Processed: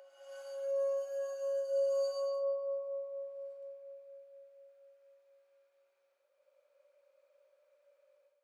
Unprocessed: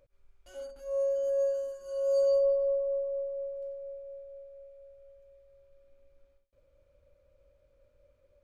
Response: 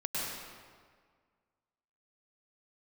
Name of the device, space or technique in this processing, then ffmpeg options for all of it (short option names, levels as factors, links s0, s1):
ghost voice: -filter_complex "[0:a]areverse[s0];[1:a]atrim=start_sample=2205[s1];[s0][s1]afir=irnorm=-1:irlink=0,areverse,highpass=f=570:w=0.5412,highpass=f=570:w=1.3066,volume=0.562"